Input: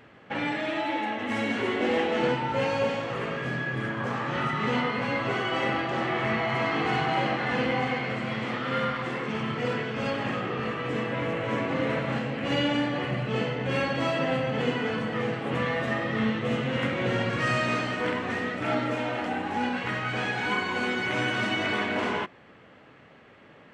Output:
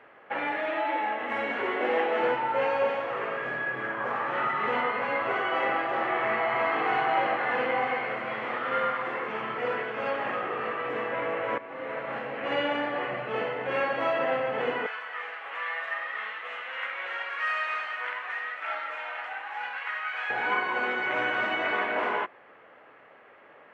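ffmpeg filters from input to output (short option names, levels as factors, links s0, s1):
-filter_complex "[0:a]asettb=1/sr,asplit=3[s0][s1][s2];[s0]atrim=end=14.864[s3];[s1]atrim=start=14.86:end=20.3,asetpts=PTS-STARTPTS,afade=t=in:d=0.004:c=qsin,afade=t=out:st=5.436:d=0.004:c=qsin,highpass=1300[s4];[s2]atrim=start=20.296[s5];[s3][s4]acrossfade=d=0.004:c1=hsin:c2=qsin[s6];[s6][s5]acrossfade=d=0.004:c1=qsin:c2=hsin,asplit=2[s7][s8];[s7]atrim=end=11.58,asetpts=PTS-STARTPTS,afade=t=out:st=11.576:d=0.004:c=hsin:silence=0.16788[s9];[s8]atrim=start=11.58,asetpts=PTS-STARTPTS,afade=t=in:d=0.85:silence=0.16788[s10];[s9][s10]concat=n=2:v=0:a=1,acrossover=split=410 2500:gain=0.1 1 0.0794[s11][s12][s13];[s11][s12][s13]amix=inputs=3:normalize=0,volume=1.41"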